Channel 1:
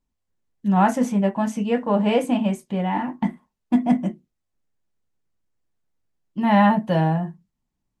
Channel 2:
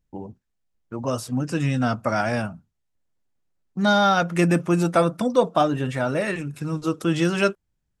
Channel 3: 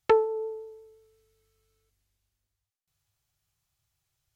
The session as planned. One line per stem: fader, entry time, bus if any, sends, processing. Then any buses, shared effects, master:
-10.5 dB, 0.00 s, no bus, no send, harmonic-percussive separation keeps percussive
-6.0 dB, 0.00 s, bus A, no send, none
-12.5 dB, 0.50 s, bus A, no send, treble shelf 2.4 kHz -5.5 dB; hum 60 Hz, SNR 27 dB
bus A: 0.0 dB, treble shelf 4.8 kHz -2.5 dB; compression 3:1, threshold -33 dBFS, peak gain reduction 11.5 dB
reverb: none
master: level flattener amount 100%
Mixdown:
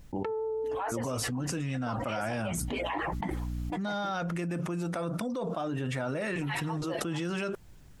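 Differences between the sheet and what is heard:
stem 1 -10.5 dB -> -18.5 dB; stem 2 -6.0 dB -> -17.0 dB; stem 3: entry 0.50 s -> 0.15 s

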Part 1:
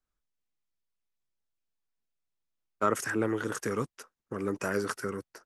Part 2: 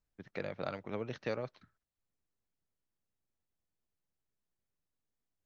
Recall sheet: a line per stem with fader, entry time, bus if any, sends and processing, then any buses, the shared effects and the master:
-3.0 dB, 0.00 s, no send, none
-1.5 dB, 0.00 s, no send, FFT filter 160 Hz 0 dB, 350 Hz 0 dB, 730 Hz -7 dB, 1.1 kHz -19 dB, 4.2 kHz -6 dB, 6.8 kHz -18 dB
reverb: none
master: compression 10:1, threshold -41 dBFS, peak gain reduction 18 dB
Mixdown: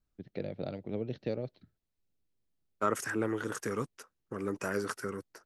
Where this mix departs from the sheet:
stem 2 -1.5 dB -> +5.0 dB; master: missing compression 10:1, threshold -41 dBFS, peak gain reduction 18 dB

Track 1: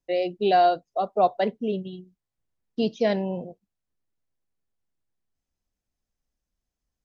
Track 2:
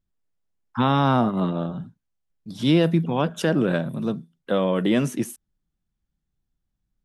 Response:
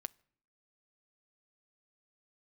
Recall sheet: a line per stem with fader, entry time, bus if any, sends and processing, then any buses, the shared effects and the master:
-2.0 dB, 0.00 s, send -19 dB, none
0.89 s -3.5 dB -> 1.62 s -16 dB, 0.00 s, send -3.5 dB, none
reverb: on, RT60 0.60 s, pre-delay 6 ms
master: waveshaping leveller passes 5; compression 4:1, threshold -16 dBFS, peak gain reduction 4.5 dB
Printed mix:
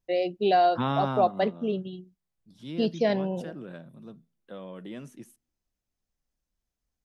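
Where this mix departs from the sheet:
stem 2 -3.5 dB -> -10.5 dB; master: missing waveshaping leveller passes 5

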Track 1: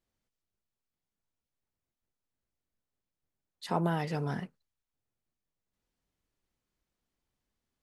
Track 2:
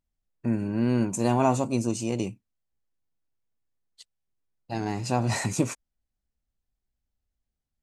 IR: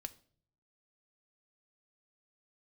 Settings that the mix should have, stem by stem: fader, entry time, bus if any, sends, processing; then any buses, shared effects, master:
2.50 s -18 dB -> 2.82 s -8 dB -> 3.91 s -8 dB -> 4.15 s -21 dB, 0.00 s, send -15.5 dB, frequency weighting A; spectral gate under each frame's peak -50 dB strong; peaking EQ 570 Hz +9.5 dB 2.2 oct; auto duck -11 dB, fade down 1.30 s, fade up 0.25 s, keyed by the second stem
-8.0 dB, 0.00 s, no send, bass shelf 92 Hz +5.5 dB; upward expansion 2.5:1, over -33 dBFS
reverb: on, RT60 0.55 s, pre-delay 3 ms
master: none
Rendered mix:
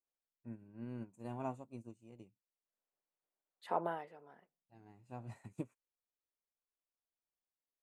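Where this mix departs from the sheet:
stem 2 -8.0 dB -> -17.0 dB; master: extra peaking EQ 5.3 kHz -14 dB 0.93 oct

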